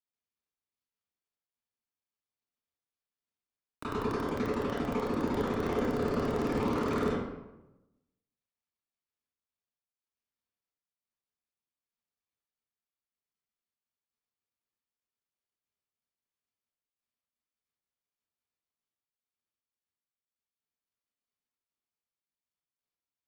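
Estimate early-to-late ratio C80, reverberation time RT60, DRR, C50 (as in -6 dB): 2.0 dB, 0.95 s, -12.5 dB, -2.5 dB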